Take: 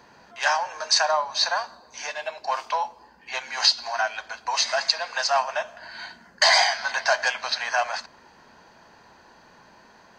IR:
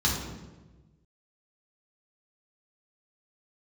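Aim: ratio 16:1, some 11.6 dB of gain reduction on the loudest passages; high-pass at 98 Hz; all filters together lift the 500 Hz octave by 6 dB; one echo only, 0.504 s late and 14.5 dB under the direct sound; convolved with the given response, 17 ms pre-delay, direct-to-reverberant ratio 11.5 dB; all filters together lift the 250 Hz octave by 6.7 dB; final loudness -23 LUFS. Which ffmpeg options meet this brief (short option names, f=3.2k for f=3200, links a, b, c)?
-filter_complex "[0:a]highpass=98,equalizer=f=250:t=o:g=6,equalizer=f=500:t=o:g=8,acompressor=threshold=-24dB:ratio=16,aecho=1:1:504:0.188,asplit=2[a][b];[1:a]atrim=start_sample=2205,adelay=17[c];[b][c]afir=irnorm=-1:irlink=0,volume=-23dB[d];[a][d]amix=inputs=2:normalize=0,volume=6dB"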